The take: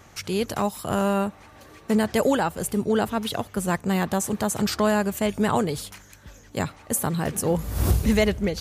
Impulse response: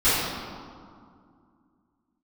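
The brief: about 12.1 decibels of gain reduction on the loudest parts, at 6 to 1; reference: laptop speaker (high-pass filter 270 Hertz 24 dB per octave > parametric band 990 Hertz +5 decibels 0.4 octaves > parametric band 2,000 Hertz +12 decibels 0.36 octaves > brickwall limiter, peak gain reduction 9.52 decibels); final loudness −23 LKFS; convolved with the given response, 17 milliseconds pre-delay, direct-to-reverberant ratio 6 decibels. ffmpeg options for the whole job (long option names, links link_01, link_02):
-filter_complex "[0:a]acompressor=threshold=-29dB:ratio=6,asplit=2[link_01][link_02];[1:a]atrim=start_sample=2205,adelay=17[link_03];[link_02][link_03]afir=irnorm=-1:irlink=0,volume=-24.5dB[link_04];[link_01][link_04]amix=inputs=2:normalize=0,highpass=frequency=270:width=0.5412,highpass=frequency=270:width=1.3066,equalizer=frequency=990:width_type=o:width=0.4:gain=5,equalizer=frequency=2000:width_type=o:width=0.36:gain=12,volume=14dB,alimiter=limit=-12dB:level=0:latency=1"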